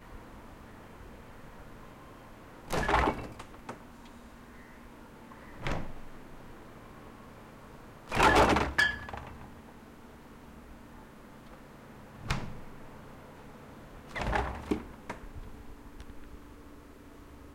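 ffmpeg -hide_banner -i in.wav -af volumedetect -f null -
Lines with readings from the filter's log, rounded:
mean_volume: -35.9 dB
max_volume: -14.7 dB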